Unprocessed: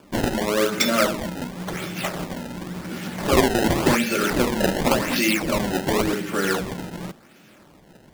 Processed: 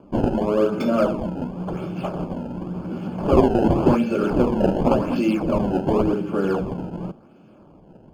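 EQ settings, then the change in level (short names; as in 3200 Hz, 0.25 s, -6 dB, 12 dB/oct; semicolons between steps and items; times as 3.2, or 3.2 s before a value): running mean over 23 samples; +3.5 dB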